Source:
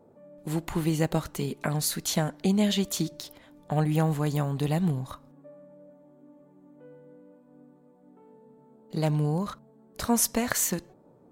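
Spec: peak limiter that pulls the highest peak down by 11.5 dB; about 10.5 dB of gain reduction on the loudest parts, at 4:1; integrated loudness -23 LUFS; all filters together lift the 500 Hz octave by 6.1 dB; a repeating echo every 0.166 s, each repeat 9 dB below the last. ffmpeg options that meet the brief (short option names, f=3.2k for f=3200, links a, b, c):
-af "equalizer=f=500:t=o:g=7.5,acompressor=threshold=-30dB:ratio=4,alimiter=level_in=0.5dB:limit=-24dB:level=0:latency=1,volume=-0.5dB,aecho=1:1:166|332|498|664:0.355|0.124|0.0435|0.0152,volume=12.5dB"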